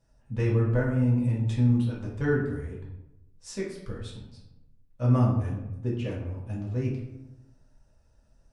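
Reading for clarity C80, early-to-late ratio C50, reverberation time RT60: 7.0 dB, 4.0 dB, 0.90 s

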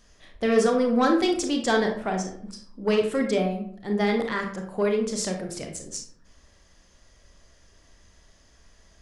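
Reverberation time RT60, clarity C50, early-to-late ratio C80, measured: 0.60 s, 6.5 dB, 11.0 dB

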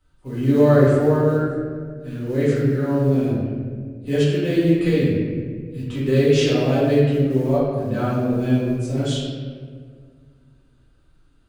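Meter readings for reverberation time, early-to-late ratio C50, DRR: 1.9 s, -1.5 dB, -10.0 dB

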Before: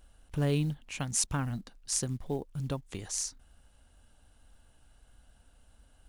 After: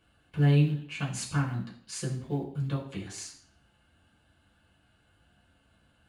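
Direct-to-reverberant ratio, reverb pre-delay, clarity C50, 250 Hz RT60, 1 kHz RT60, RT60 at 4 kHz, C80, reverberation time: -5.5 dB, 3 ms, 8.5 dB, 0.55 s, 0.55 s, 0.60 s, 12.5 dB, 0.55 s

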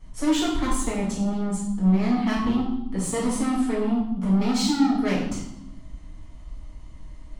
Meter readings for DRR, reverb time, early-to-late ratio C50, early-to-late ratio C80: -7.5 dB, 0.90 s, 2.5 dB, 6.0 dB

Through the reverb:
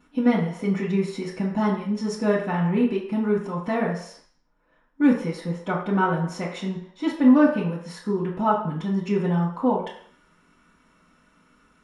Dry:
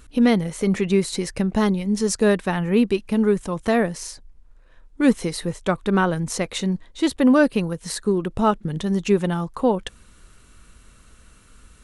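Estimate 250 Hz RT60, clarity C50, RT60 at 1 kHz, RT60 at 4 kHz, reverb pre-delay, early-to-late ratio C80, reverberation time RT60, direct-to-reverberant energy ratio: 0.50 s, 5.0 dB, 0.65 s, 0.60 s, 3 ms, 8.5 dB, 0.60 s, -11.0 dB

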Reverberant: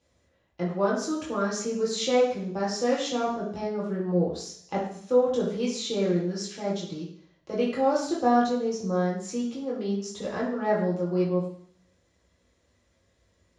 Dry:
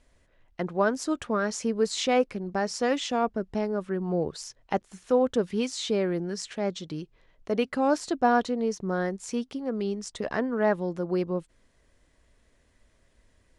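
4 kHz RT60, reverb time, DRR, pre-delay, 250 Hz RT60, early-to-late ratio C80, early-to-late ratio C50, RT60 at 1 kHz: 0.75 s, 0.60 s, -6.0 dB, 3 ms, 0.65 s, 7.5 dB, 4.0 dB, 0.55 s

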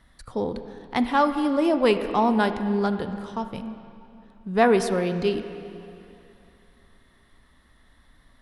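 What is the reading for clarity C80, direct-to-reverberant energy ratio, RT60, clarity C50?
10.0 dB, 8.5 dB, 2.9 s, 9.5 dB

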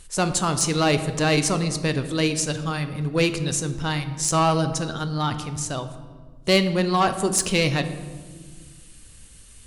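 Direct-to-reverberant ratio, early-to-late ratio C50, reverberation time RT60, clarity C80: 9.0 dB, 11.5 dB, 1.6 s, 13.0 dB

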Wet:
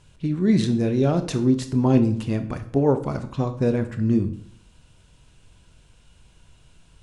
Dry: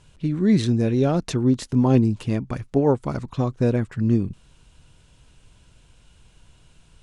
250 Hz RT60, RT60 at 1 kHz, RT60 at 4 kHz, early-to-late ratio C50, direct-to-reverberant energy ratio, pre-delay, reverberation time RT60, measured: 0.65 s, 0.60 s, 0.45 s, 12.5 dB, 8.5 dB, 18 ms, 0.60 s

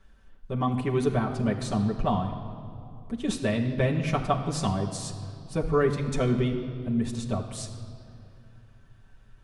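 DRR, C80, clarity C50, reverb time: -2.0 dB, 9.0 dB, 8.0 dB, 2.5 s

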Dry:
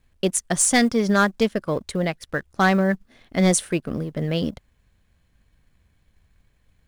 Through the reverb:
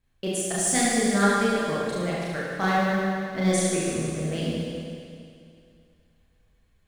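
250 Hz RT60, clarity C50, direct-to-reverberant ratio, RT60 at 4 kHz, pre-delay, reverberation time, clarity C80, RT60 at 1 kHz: 2.4 s, -3.0 dB, -7.5 dB, 2.4 s, 30 ms, 2.4 s, -1.0 dB, 2.4 s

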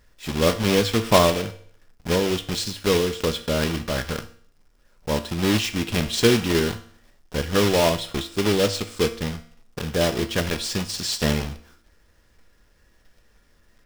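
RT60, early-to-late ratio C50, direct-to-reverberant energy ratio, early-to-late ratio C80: 0.55 s, 14.0 dB, 8.0 dB, 17.0 dB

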